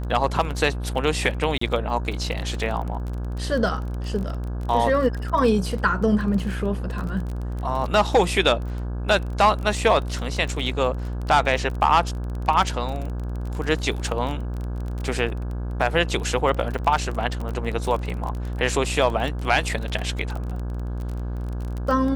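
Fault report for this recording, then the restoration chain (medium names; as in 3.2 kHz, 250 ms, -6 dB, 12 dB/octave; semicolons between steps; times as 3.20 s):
buzz 60 Hz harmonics 28 -28 dBFS
crackle 26 per s -28 dBFS
1.58–1.61 s: dropout 34 ms
16.78–16.79 s: dropout 7.6 ms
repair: de-click; de-hum 60 Hz, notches 28; interpolate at 1.58 s, 34 ms; interpolate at 16.78 s, 7.6 ms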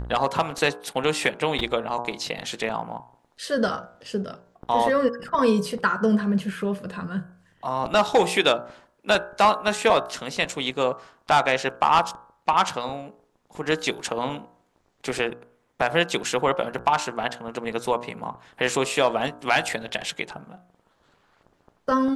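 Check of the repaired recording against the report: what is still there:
nothing left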